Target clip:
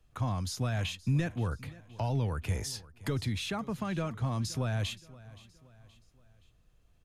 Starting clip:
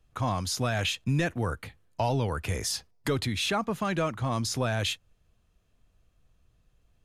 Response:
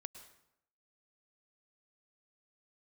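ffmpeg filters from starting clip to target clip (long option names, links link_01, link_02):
-filter_complex "[0:a]acrossover=split=210[link_01][link_02];[link_02]acompressor=threshold=-50dB:ratio=1.5[link_03];[link_01][link_03]amix=inputs=2:normalize=0,asplit=2[link_04][link_05];[link_05]aecho=0:1:523|1046|1569:0.1|0.045|0.0202[link_06];[link_04][link_06]amix=inputs=2:normalize=0"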